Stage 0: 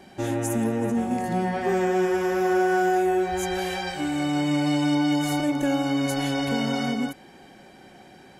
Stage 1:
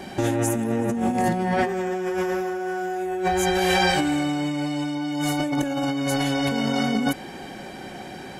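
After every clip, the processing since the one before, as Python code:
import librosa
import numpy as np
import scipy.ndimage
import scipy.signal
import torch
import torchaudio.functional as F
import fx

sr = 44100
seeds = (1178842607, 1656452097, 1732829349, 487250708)

y = fx.over_compress(x, sr, threshold_db=-30.0, ratio=-1.0)
y = y * librosa.db_to_amplitude(6.0)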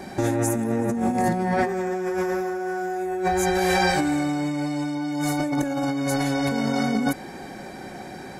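y = fx.peak_eq(x, sr, hz=3000.0, db=-11.5, octaves=0.33)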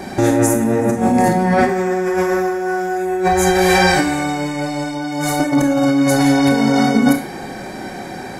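y = fx.rev_schroeder(x, sr, rt60_s=0.36, comb_ms=25, drr_db=5.0)
y = y * librosa.db_to_amplitude(7.5)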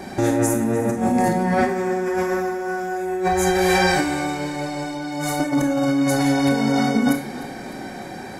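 y = fx.echo_feedback(x, sr, ms=302, feedback_pct=58, wet_db=-17)
y = y * librosa.db_to_amplitude(-5.0)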